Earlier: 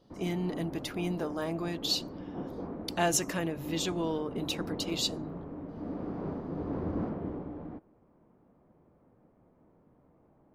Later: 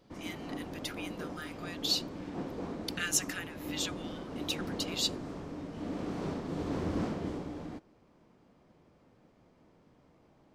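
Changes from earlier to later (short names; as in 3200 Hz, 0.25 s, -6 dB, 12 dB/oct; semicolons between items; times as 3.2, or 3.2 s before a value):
speech: add brick-wall FIR high-pass 1200 Hz; background: remove LPF 1200 Hz 12 dB/oct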